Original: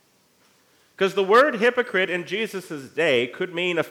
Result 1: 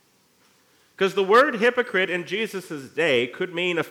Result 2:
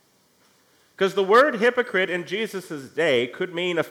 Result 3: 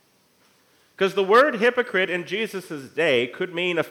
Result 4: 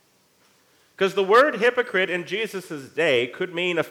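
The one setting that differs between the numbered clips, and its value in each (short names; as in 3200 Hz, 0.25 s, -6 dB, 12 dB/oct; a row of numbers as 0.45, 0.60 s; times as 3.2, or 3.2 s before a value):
notch, frequency: 620, 2600, 7100, 230 Hz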